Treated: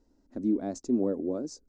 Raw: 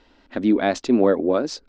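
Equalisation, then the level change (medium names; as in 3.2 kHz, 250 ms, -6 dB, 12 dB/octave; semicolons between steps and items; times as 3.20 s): FFT filter 300 Hz 0 dB, 3.2 kHz -26 dB, 6.4 kHz +2 dB; -8.0 dB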